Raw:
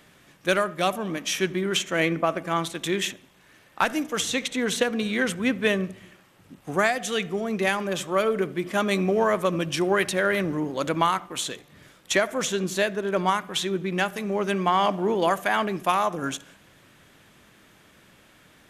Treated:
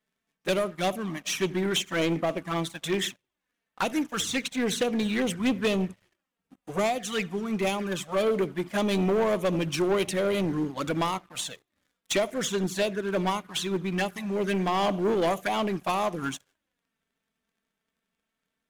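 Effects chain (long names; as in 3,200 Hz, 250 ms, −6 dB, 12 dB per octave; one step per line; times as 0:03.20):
flanger swept by the level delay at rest 4.8 ms, full sweep at −20 dBFS
leveller curve on the samples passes 3
expander for the loud parts 1.5 to 1, over −39 dBFS
level −7 dB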